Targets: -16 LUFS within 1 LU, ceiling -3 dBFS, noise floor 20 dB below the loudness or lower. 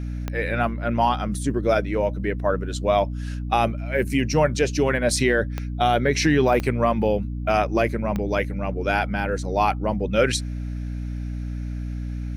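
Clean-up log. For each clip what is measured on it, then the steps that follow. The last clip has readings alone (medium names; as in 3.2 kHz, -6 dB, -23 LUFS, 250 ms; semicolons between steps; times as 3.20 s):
clicks found 4; hum 60 Hz; highest harmonic 300 Hz; hum level -26 dBFS; loudness -23.0 LUFS; peak level -7.0 dBFS; loudness target -16.0 LUFS
-> de-click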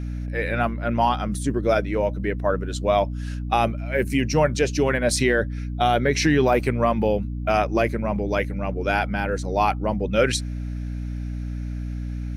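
clicks found 0; hum 60 Hz; highest harmonic 300 Hz; hum level -26 dBFS
-> de-hum 60 Hz, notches 5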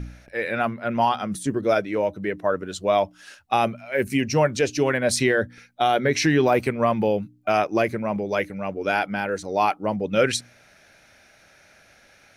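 hum not found; loudness -23.5 LUFS; peak level -8.0 dBFS; loudness target -16.0 LUFS
-> trim +7.5 dB; peak limiter -3 dBFS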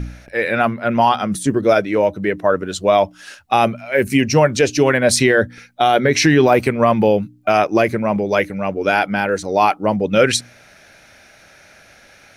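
loudness -16.5 LUFS; peak level -3.0 dBFS; noise floor -48 dBFS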